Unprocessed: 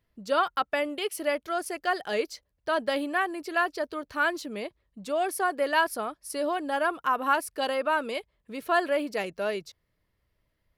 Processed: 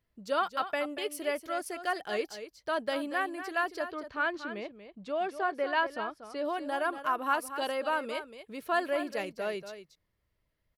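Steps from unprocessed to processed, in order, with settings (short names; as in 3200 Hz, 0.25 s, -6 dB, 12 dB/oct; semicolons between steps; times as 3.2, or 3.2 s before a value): 3.84–6.45 LPF 4000 Hz 12 dB/oct; echo 0.236 s -11 dB; gain -4.5 dB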